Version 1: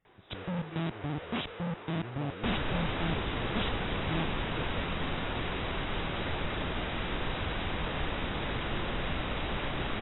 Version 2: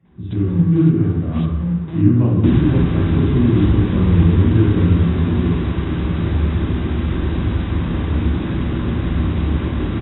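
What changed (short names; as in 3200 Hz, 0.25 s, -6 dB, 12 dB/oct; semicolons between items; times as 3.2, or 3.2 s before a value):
speech +6.0 dB; first sound -5.0 dB; reverb: on, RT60 1.1 s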